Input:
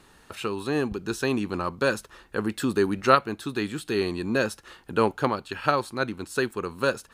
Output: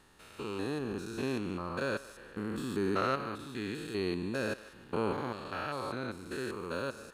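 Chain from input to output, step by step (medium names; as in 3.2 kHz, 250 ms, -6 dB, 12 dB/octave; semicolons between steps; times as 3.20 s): spectrogram pixelated in time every 200 ms; thinning echo 152 ms, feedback 47%, level -16.5 dB; trim -5.5 dB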